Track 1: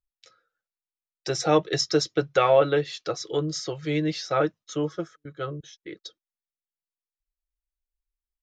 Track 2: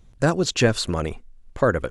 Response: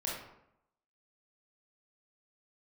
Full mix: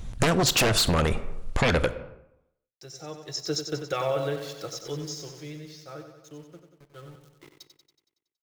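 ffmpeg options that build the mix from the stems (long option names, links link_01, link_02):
-filter_complex "[0:a]agate=range=-33dB:threshold=-46dB:ratio=3:detection=peak,bass=frequency=250:gain=6,treble=frequency=4000:gain=9,aeval=exprs='val(0)*gte(abs(val(0)),0.02)':channel_layout=same,adelay=1550,volume=-3.5dB,afade=type=in:start_time=3.25:duration=0.26:silence=0.266073,afade=type=out:start_time=4.87:duration=0.77:silence=0.298538,afade=type=in:start_time=6.68:duration=0.64:silence=0.473151,asplit=3[link_01][link_02][link_03];[link_02]volume=-18dB[link_04];[link_03]volume=-7.5dB[link_05];[1:a]equalizer=frequency=360:width_type=o:width=0.77:gain=-4.5,alimiter=limit=-12dB:level=0:latency=1:release=51,aeval=exprs='0.282*sin(PI/2*3.16*val(0)/0.282)':channel_layout=same,volume=-0.5dB,asplit=2[link_06][link_07];[link_07]volume=-15.5dB[link_08];[2:a]atrim=start_sample=2205[link_09];[link_04][link_08]amix=inputs=2:normalize=0[link_10];[link_10][link_09]afir=irnorm=-1:irlink=0[link_11];[link_05]aecho=0:1:93|186|279|372|465|558|651|744|837:1|0.59|0.348|0.205|0.121|0.0715|0.0422|0.0249|0.0147[link_12];[link_01][link_06][link_11][link_12]amix=inputs=4:normalize=0,acompressor=threshold=-20dB:ratio=6"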